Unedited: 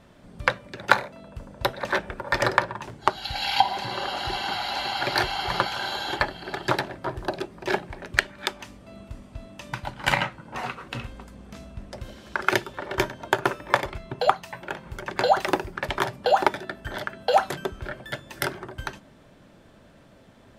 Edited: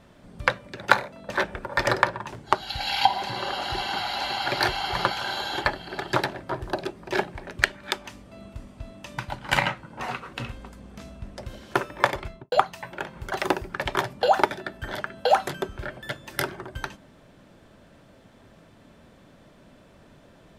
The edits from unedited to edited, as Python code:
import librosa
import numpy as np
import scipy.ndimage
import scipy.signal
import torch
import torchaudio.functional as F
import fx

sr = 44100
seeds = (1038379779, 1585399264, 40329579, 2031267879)

y = fx.studio_fade_out(x, sr, start_s=13.97, length_s=0.25)
y = fx.edit(y, sr, fx.cut(start_s=1.29, length_s=0.55),
    fx.cut(start_s=12.29, length_s=1.15),
    fx.cut(start_s=15.02, length_s=0.33), tone=tone)